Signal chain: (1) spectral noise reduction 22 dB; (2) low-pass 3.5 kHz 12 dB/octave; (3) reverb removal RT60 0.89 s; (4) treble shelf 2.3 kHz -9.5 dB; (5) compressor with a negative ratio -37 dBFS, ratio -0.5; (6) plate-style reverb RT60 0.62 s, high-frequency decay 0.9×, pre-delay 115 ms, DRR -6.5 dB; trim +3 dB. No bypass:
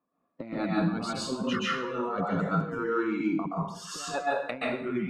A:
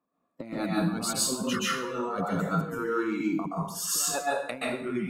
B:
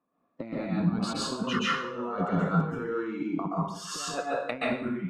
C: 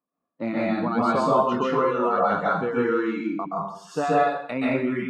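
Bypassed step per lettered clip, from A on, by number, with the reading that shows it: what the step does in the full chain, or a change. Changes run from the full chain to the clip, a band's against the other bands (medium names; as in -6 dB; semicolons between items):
2, 8 kHz band +14.0 dB; 3, 125 Hz band +3.0 dB; 5, momentary loudness spread change +2 LU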